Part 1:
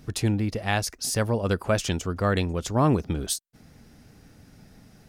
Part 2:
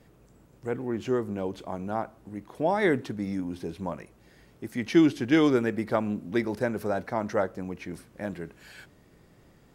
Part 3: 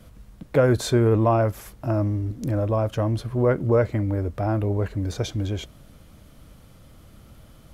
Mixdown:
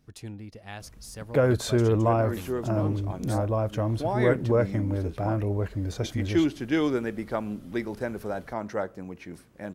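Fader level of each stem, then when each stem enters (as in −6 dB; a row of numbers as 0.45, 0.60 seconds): −15.5, −3.5, −3.5 decibels; 0.00, 1.40, 0.80 seconds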